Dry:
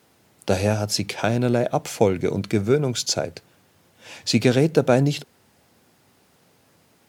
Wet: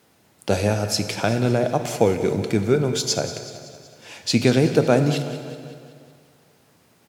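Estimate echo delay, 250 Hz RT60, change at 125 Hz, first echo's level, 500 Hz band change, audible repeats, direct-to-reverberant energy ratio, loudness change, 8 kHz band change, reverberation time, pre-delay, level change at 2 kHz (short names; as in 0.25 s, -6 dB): 0.187 s, 2.1 s, +1.0 dB, -14.0 dB, +0.5 dB, 4, 7.0 dB, +0.5 dB, +0.5 dB, 2.1 s, 4 ms, +1.0 dB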